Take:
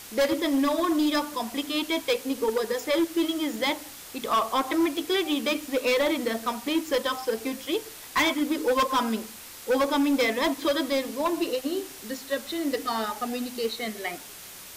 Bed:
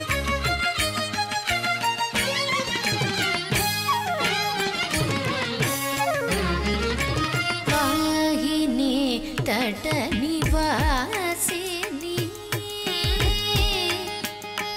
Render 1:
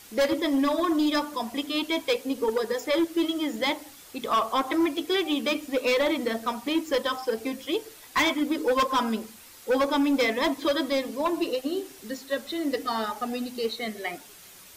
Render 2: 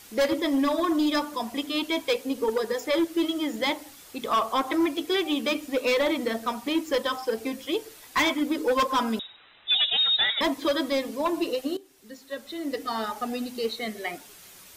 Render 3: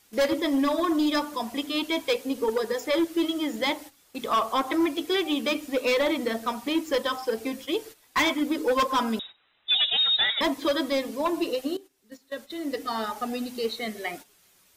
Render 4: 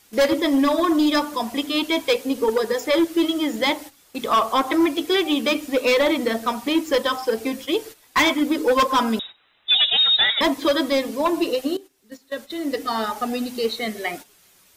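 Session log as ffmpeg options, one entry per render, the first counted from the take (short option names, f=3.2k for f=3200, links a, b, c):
-af "afftdn=nr=7:nf=-44"
-filter_complex "[0:a]asettb=1/sr,asplit=3[a][b][c];[a]atrim=end=9.194[d];[b]atrim=start=9.19:end=10.41,asetpts=PTS-STARTPTS,afade=t=in:d=0.004:c=qsin,afade=t=out:st=1.216:d=0.004:c=qsin,lowpass=f=3.4k:t=q:w=0.5098,lowpass=f=3.4k:t=q:w=0.6013,lowpass=f=3.4k:t=q:w=0.9,lowpass=f=3.4k:t=q:w=2.563,afreqshift=-4000[e];[c]atrim=start=10.406[f];[d][e]acrossfade=d=0.004:c1=hsin:c2=qsin[g];[g][f]acrossfade=d=0.004:c1=qsin:c2=hsin,asplit=2[h][i];[h]atrim=end=11.77,asetpts=PTS-STARTPTS,afade=t=out:st=11.766:d=0.004:c=hsin:silence=0.133352[j];[i]atrim=start=11.77,asetpts=PTS-STARTPTS,afade=t=in:d=1.42:silence=0.133352[k];[j][k]concat=n=2:v=0:a=1"
-af "agate=range=-12dB:threshold=-41dB:ratio=16:detection=peak"
-af "volume=5.5dB"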